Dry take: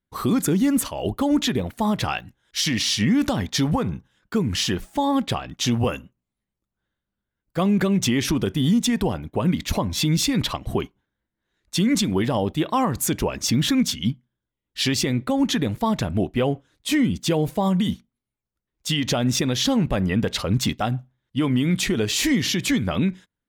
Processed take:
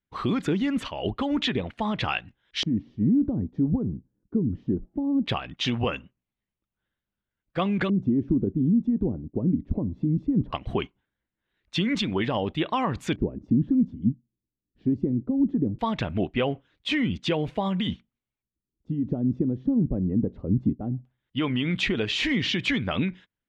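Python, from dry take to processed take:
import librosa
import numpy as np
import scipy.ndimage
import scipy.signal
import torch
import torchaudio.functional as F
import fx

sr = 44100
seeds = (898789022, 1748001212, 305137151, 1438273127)

y = fx.wow_flutter(x, sr, seeds[0], rate_hz=2.1, depth_cents=22.0)
y = fx.filter_lfo_lowpass(y, sr, shape='square', hz=0.19, low_hz=300.0, high_hz=2900.0, q=1.7)
y = fx.hpss(y, sr, part='percussive', gain_db=4)
y = y * librosa.db_to_amplitude(-6.5)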